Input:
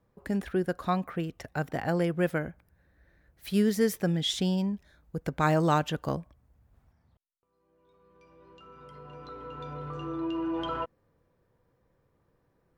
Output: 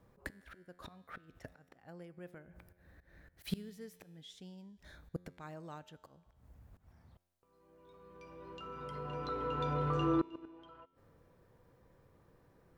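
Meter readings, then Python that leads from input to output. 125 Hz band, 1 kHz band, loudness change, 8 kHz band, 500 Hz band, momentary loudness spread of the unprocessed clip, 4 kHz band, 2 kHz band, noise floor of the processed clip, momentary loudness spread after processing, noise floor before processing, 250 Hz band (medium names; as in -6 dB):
-11.0 dB, -9.5 dB, -11.0 dB, -19.0 dB, -12.0 dB, 16 LU, -16.0 dB, -14.0 dB, -72 dBFS, 23 LU, -72 dBFS, -12.5 dB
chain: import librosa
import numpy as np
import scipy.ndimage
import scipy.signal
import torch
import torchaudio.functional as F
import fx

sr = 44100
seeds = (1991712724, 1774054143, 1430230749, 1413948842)

y = fx.gate_flip(x, sr, shuts_db=-25.0, range_db=-29)
y = fx.auto_swell(y, sr, attack_ms=168.0)
y = fx.comb_fb(y, sr, f0_hz=89.0, decay_s=1.7, harmonics='all', damping=0.0, mix_pct=50)
y = y * 10.0 ** (10.5 / 20.0)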